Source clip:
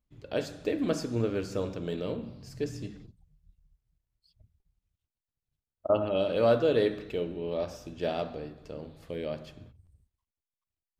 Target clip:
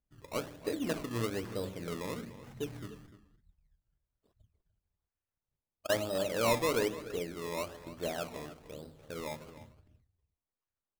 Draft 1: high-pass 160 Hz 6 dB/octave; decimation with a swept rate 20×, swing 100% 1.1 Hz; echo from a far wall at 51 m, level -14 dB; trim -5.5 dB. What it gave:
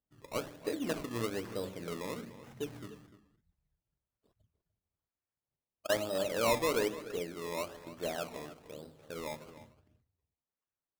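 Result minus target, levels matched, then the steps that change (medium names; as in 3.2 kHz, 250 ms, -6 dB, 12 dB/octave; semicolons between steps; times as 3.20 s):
125 Hz band -3.5 dB
remove: high-pass 160 Hz 6 dB/octave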